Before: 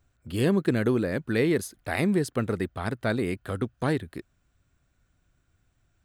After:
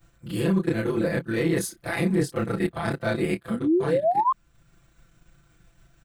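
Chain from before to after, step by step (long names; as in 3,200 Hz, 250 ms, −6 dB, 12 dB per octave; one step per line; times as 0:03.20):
every overlapping window played backwards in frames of 72 ms
transient designer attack +2 dB, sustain −6 dB
in parallel at −4 dB: gain into a clipping stage and back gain 22 dB
on the sum: sound drawn into the spectrogram rise, 0:03.50–0:04.32, 210–1,100 Hz −19 dBFS
reversed playback
downward compressor 6 to 1, threshold −33 dBFS, peak gain reduction 16 dB
reversed playback
comb filter 5.9 ms, depth 88%
level +8.5 dB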